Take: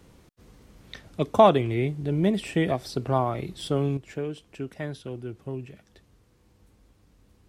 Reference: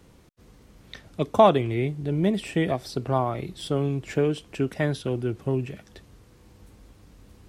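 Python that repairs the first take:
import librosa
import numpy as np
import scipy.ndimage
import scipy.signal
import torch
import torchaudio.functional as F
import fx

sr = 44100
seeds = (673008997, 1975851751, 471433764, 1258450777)

y = fx.gain(x, sr, db=fx.steps((0.0, 0.0), (3.97, 8.5)))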